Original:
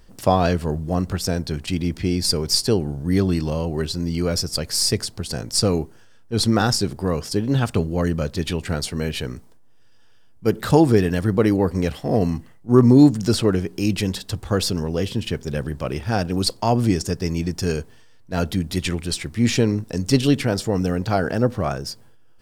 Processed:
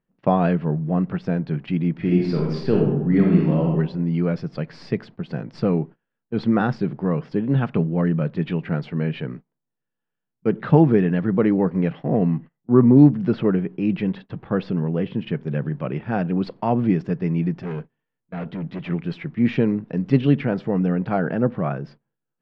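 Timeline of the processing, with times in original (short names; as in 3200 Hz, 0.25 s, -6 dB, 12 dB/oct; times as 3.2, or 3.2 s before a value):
1.93–3.68 reverb throw, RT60 0.83 s, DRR -1.5 dB
12.04–15.19 air absorption 74 m
17.61–18.9 hard clip -26.5 dBFS
whole clip: gate -34 dBFS, range -22 dB; LPF 2600 Hz 24 dB/oct; resonant low shelf 110 Hz -11.5 dB, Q 3; gain -2.5 dB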